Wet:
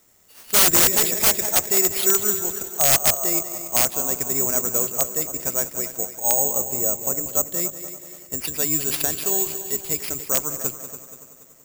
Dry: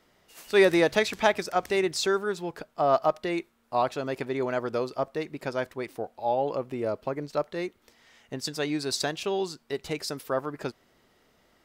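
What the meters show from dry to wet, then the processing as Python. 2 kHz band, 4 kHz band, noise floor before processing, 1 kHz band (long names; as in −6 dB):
+1.5 dB, +7.5 dB, −66 dBFS, −1.5 dB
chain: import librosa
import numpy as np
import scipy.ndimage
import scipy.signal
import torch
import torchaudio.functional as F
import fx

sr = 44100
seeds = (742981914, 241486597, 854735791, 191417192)

y = fx.octave_divider(x, sr, octaves=1, level_db=-5.0)
y = fx.air_absorb(y, sr, metres=55.0)
y = fx.echo_heads(y, sr, ms=95, heads='second and third', feedback_pct=53, wet_db=-13)
y = (np.mod(10.0 ** (15.5 / 20.0) * y + 1.0, 2.0) - 1.0) / 10.0 ** (15.5 / 20.0)
y = (np.kron(y[::6], np.eye(6)[0]) * 6)[:len(y)]
y = F.gain(torch.from_numpy(y), -1.5).numpy()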